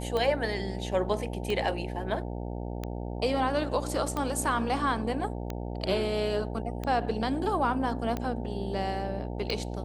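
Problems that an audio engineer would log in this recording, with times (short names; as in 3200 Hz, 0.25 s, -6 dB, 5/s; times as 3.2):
buzz 60 Hz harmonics 15 -35 dBFS
tick 45 rpm -18 dBFS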